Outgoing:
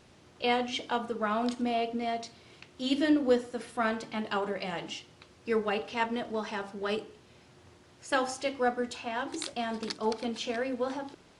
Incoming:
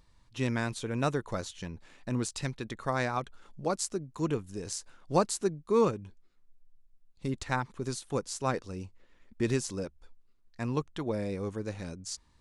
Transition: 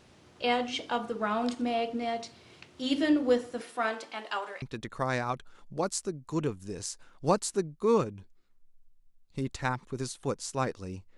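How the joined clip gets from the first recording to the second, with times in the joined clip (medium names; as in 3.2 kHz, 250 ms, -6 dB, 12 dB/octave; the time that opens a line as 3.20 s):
outgoing
3.61–4.62 s: high-pass 250 Hz -> 940 Hz
4.62 s: go over to incoming from 2.49 s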